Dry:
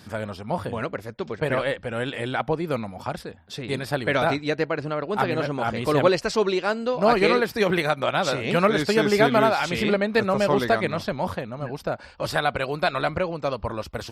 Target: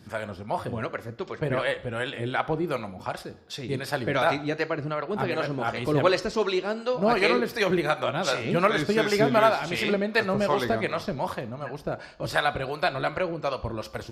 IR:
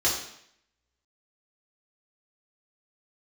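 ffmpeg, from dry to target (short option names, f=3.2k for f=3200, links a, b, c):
-filter_complex "[0:a]acrossover=split=490[a][b];[a]aeval=exprs='val(0)*(1-0.7/2+0.7/2*cos(2*PI*2.7*n/s))':c=same[c];[b]aeval=exprs='val(0)*(1-0.7/2-0.7/2*cos(2*PI*2.7*n/s))':c=same[d];[c][d]amix=inputs=2:normalize=0,asplit=2[e][f];[1:a]atrim=start_sample=2205[g];[f][g]afir=irnorm=-1:irlink=0,volume=-22.5dB[h];[e][h]amix=inputs=2:normalize=0"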